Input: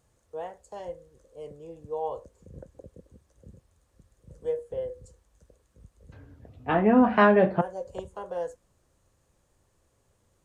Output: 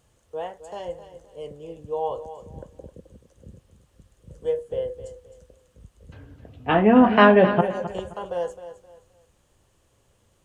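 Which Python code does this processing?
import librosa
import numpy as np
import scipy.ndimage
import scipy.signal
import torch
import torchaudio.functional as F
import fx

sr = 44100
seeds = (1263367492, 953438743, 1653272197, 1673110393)

p1 = fx.peak_eq(x, sr, hz=3000.0, db=7.0, octaves=0.44)
p2 = p1 + fx.echo_feedback(p1, sr, ms=262, feedback_pct=29, wet_db=-12.5, dry=0)
y = F.gain(torch.from_numpy(p2), 4.5).numpy()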